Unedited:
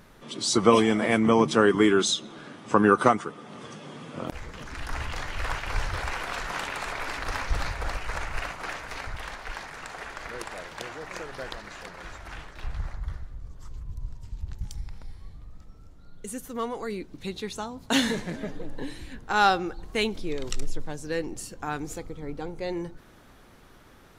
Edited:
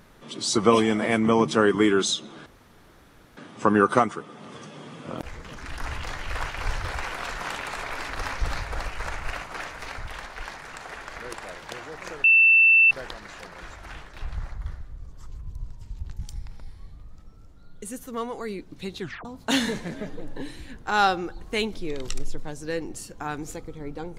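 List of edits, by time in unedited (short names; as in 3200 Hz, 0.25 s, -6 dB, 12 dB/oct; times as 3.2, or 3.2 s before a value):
2.46 insert room tone 0.91 s
11.33 add tone 2670 Hz -12.5 dBFS 0.67 s
17.42 tape stop 0.25 s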